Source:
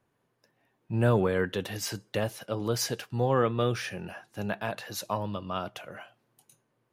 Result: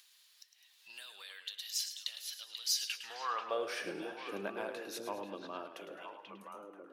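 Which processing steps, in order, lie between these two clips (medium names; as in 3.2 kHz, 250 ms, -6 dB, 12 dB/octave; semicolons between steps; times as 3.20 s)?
Doppler pass-by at 2.78 s, 13 m/s, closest 4.5 m; bass shelf 170 Hz -8.5 dB; compression 5:1, threshold -40 dBFS, peak gain reduction 13 dB; on a send: repeats whose band climbs or falls 487 ms, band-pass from 2.9 kHz, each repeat -1.4 oct, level -5.5 dB; on the sum: high-pass sweep 4 kHz -> 300 Hz, 2.74–3.85 s; upward compressor, threshold -47 dBFS; modulated delay 106 ms, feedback 45%, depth 64 cents, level -10 dB; trim +6 dB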